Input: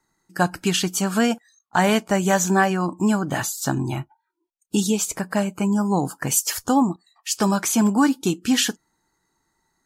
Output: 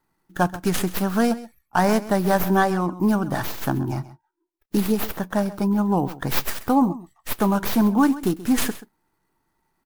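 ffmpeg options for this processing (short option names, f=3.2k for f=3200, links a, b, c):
-filter_complex "[0:a]acrossover=split=680|2000[a][b][c];[c]aeval=exprs='abs(val(0))':c=same[d];[a][b][d]amix=inputs=3:normalize=0,aecho=1:1:132:0.15"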